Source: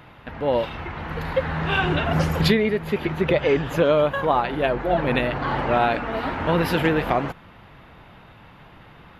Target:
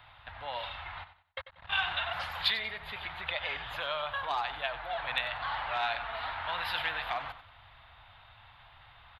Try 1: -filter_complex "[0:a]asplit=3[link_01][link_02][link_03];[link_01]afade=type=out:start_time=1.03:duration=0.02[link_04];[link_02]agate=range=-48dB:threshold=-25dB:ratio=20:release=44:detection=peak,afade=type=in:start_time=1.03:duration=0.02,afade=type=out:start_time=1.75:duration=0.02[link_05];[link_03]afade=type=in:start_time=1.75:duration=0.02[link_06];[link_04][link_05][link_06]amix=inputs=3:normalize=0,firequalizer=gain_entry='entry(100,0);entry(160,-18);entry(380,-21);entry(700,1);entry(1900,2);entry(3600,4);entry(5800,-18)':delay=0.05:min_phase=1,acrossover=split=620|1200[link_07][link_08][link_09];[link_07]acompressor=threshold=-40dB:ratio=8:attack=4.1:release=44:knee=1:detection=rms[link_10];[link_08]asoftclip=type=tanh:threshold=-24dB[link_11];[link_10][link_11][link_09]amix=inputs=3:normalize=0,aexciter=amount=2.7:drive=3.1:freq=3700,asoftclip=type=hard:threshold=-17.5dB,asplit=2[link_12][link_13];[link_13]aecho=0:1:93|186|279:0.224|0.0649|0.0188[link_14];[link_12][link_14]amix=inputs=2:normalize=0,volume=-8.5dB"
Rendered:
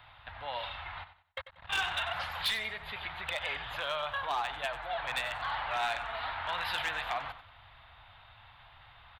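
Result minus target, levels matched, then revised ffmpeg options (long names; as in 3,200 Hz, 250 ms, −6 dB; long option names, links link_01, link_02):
hard clipping: distortion +25 dB
-filter_complex "[0:a]asplit=3[link_01][link_02][link_03];[link_01]afade=type=out:start_time=1.03:duration=0.02[link_04];[link_02]agate=range=-48dB:threshold=-25dB:ratio=20:release=44:detection=peak,afade=type=in:start_time=1.03:duration=0.02,afade=type=out:start_time=1.75:duration=0.02[link_05];[link_03]afade=type=in:start_time=1.75:duration=0.02[link_06];[link_04][link_05][link_06]amix=inputs=3:normalize=0,firequalizer=gain_entry='entry(100,0);entry(160,-18);entry(380,-21);entry(700,1);entry(1900,2);entry(3600,4);entry(5800,-18)':delay=0.05:min_phase=1,acrossover=split=620|1200[link_07][link_08][link_09];[link_07]acompressor=threshold=-40dB:ratio=8:attack=4.1:release=44:knee=1:detection=rms[link_10];[link_08]asoftclip=type=tanh:threshold=-24dB[link_11];[link_10][link_11][link_09]amix=inputs=3:normalize=0,aexciter=amount=2.7:drive=3.1:freq=3700,asoftclip=type=hard:threshold=-7dB,asplit=2[link_12][link_13];[link_13]aecho=0:1:93|186|279:0.224|0.0649|0.0188[link_14];[link_12][link_14]amix=inputs=2:normalize=0,volume=-8.5dB"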